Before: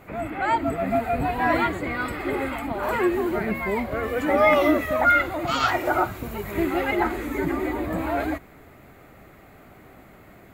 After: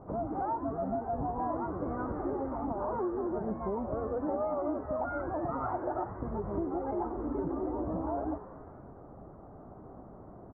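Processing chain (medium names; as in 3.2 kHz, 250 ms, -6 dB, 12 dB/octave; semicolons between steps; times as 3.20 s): steep low-pass 1.1 kHz 36 dB/octave; compression, threshold -31 dBFS, peak gain reduction 15 dB; frequency-shifting echo 91 ms, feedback 64%, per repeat +110 Hz, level -16 dB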